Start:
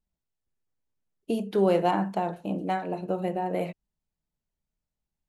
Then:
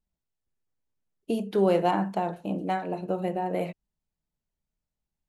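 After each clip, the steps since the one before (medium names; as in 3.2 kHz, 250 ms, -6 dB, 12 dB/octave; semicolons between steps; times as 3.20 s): no audible change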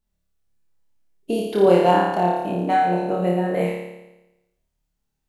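flutter echo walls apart 4.8 m, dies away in 0.98 s; trim +3.5 dB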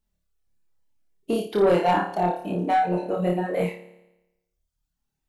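reverb removal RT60 0.99 s; saturation -12.5 dBFS, distortion -14 dB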